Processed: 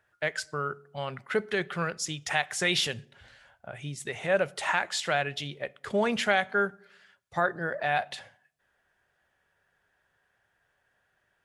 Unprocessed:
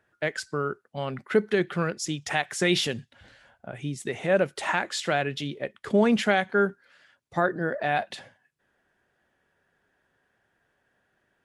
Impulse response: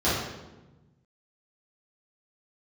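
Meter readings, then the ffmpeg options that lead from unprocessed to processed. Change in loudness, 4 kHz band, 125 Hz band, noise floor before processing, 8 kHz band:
−2.5 dB, 0.0 dB, −5.0 dB, −73 dBFS, 0.0 dB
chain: -filter_complex "[0:a]equalizer=frequency=270:width_type=o:width=1.5:gain=-10.5,asplit=2[link_01][link_02];[1:a]atrim=start_sample=2205,asetrate=79380,aresample=44100[link_03];[link_02][link_03]afir=irnorm=-1:irlink=0,volume=-33dB[link_04];[link_01][link_04]amix=inputs=2:normalize=0"

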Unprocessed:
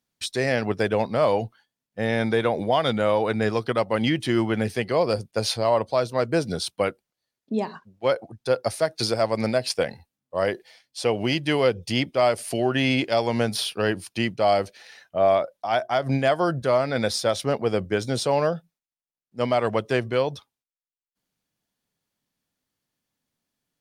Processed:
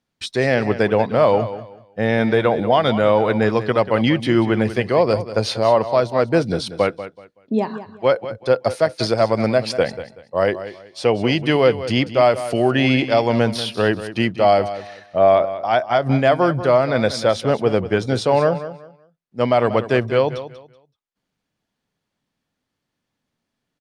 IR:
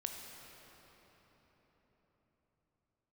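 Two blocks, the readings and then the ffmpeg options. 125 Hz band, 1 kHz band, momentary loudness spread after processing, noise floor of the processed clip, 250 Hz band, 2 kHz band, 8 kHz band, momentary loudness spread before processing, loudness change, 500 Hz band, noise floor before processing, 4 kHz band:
+6.0 dB, +6.0 dB, 8 LU, −79 dBFS, +6.0 dB, +5.0 dB, −2.5 dB, 7 LU, +5.5 dB, +6.0 dB, below −85 dBFS, +2.5 dB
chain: -af "aemphasis=mode=reproduction:type=50fm,aecho=1:1:189|378|567:0.224|0.056|0.014,volume=5.5dB"

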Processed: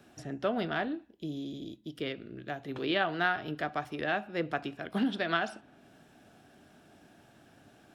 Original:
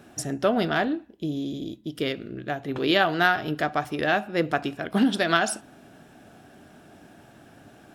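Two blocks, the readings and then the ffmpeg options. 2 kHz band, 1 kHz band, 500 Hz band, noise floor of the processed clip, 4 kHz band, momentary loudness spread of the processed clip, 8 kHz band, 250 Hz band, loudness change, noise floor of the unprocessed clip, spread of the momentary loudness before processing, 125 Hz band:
−7.5 dB, −8.0 dB, −8.5 dB, −61 dBFS, −9.0 dB, 11 LU, below −20 dB, −8.5 dB, −8.0 dB, −52 dBFS, 11 LU, −8.5 dB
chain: -filter_complex "[0:a]equalizer=frequency=4100:width_type=o:width=1.8:gain=3.5,acrossover=split=280|1200|3600[link_01][link_02][link_03][link_04];[link_04]acompressor=threshold=-49dB:ratio=6[link_05];[link_01][link_02][link_03][link_05]amix=inputs=4:normalize=0,volume=-8.5dB"

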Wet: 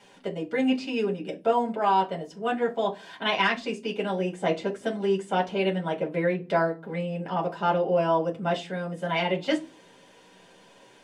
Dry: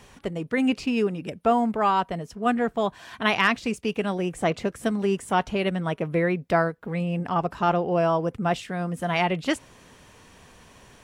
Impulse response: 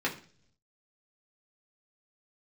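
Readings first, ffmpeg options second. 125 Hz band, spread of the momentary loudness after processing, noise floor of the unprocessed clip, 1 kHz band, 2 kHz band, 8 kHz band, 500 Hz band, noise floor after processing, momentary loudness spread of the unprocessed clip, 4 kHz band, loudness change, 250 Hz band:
−4.5 dB, 8 LU, −53 dBFS, −1.5 dB, −3.0 dB, can't be measured, 0.0 dB, −55 dBFS, 6 LU, 0.0 dB, −2.0 dB, −3.5 dB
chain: -filter_complex "[0:a]acrossover=split=8400[link_01][link_02];[link_02]acompressor=threshold=-57dB:ratio=4:attack=1:release=60[link_03];[link_01][link_03]amix=inputs=2:normalize=0[link_04];[1:a]atrim=start_sample=2205,asetrate=83790,aresample=44100[link_05];[link_04][link_05]afir=irnorm=-1:irlink=0,volume=-4.5dB"

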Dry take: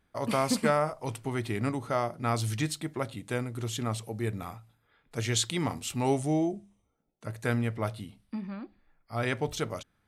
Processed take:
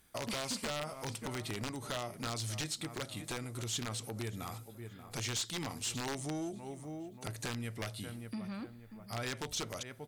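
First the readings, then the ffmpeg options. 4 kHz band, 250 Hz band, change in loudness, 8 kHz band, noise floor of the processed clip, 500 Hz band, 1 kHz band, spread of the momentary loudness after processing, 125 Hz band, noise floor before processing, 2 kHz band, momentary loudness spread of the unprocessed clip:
−2.0 dB, −9.5 dB, −8.0 dB, −2.5 dB, −53 dBFS, −11.0 dB, −10.0 dB, 8 LU, −9.0 dB, −74 dBFS, −6.5 dB, 14 LU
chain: -filter_complex "[0:a]aeval=exprs='0.251*(cos(1*acos(clip(val(0)/0.251,-1,1)))-cos(1*PI/2))+0.00794*(cos(2*acos(clip(val(0)/0.251,-1,1)))-cos(2*PI/2))+0.00141*(cos(3*acos(clip(val(0)/0.251,-1,1)))-cos(3*PI/2))+0.00708*(cos(6*acos(clip(val(0)/0.251,-1,1)))-cos(6*PI/2))+0.00501*(cos(8*acos(clip(val(0)/0.251,-1,1)))-cos(8*PI/2))':channel_layout=same,asplit=2[link_01][link_02];[link_02]adelay=584,lowpass=frequency=1800:poles=1,volume=-17dB,asplit=2[link_03][link_04];[link_04]adelay=584,lowpass=frequency=1800:poles=1,volume=0.35,asplit=2[link_05][link_06];[link_06]adelay=584,lowpass=frequency=1800:poles=1,volume=0.35[link_07];[link_03][link_05][link_07]amix=inputs=3:normalize=0[link_08];[link_01][link_08]amix=inputs=2:normalize=0,acompressor=threshold=-39dB:ratio=3,aeval=exprs='(mod(31.6*val(0)+1,2)-1)/31.6':channel_layout=same,highshelf=frequency=3900:gain=11,asoftclip=type=tanh:threshold=-32.5dB,aemphasis=mode=production:type=cd,acrossover=split=6700[link_09][link_10];[link_10]acompressor=threshold=-54dB:ratio=4:attack=1:release=60[link_11];[link_09][link_11]amix=inputs=2:normalize=0,volume=1.5dB"

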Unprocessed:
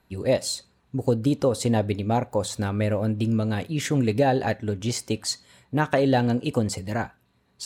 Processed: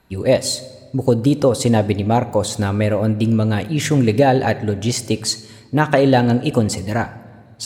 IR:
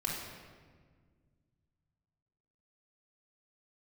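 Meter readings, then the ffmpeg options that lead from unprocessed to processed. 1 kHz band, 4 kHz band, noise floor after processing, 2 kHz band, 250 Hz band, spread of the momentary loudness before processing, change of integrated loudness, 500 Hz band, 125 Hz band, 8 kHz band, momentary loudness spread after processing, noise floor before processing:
+7.0 dB, +7.0 dB, −44 dBFS, +7.0 dB, +7.0 dB, 9 LU, +7.0 dB, +7.0 dB, +7.0 dB, +7.0 dB, 9 LU, −65 dBFS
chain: -filter_complex "[0:a]asplit=2[link_01][link_02];[1:a]atrim=start_sample=2205,adelay=61[link_03];[link_02][link_03]afir=irnorm=-1:irlink=0,volume=-20.5dB[link_04];[link_01][link_04]amix=inputs=2:normalize=0,volume=7dB"

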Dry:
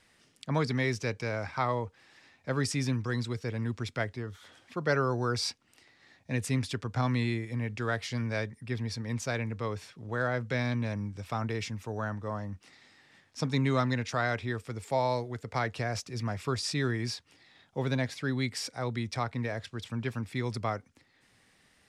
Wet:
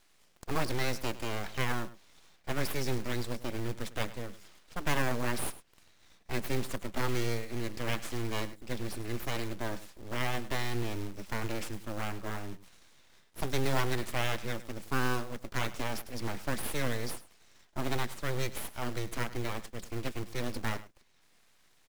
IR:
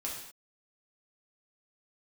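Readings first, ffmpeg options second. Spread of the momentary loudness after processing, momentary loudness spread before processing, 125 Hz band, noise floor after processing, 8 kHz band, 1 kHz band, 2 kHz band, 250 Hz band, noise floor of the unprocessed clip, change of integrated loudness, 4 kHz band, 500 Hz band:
9 LU, 8 LU, −5.5 dB, −65 dBFS, 0.0 dB, −3.0 dB, −2.0 dB, −4.5 dB, −66 dBFS, −3.5 dB, −1.0 dB, −3.5 dB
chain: -af "aeval=exprs='abs(val(0))':channel_layout=same,aecho=1:1:102:0.15,acrusher=bits=4:mode=log:mix=0:aa=0.000001"

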